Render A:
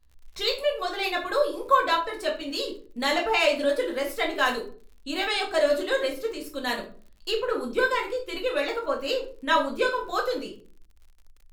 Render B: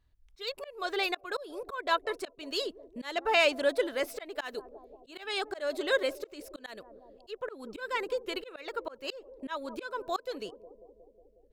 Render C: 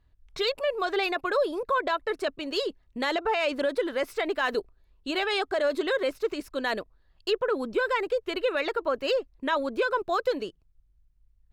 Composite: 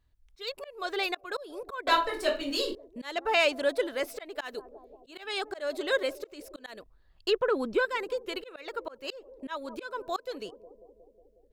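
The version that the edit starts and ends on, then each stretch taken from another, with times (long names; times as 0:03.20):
B
0:01.87–0:02.75: punch in from A
0:06.83–0:07.85: punch in from C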